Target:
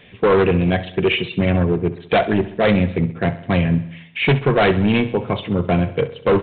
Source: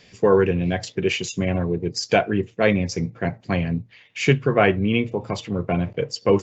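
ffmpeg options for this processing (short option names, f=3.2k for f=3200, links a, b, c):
-af "aresample=8000,asoftclip=type=hard:threshold=-17dB,aresample=44100,aecho=1:1:66|132|198|264|330|396:0.168|0.099|0.0584|0.0345|0.0203|0.012,volume=6dB"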